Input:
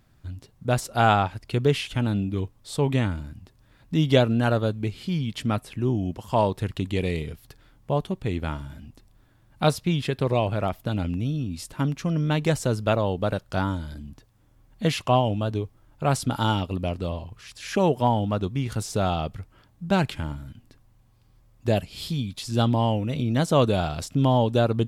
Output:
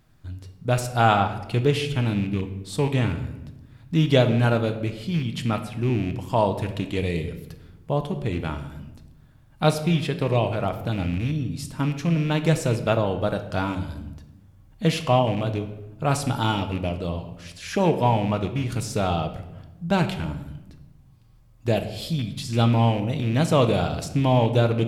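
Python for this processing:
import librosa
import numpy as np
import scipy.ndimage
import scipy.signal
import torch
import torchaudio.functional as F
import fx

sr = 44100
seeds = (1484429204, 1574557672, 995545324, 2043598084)

y = fx.rattle_buzz(x, sr, strikes_db=-23.0, level_db=-28.0)
y = fx.room_shoebox(y, sr, seeds[0], volume_m3=450.0, walls='mixed', distance_m=0.55)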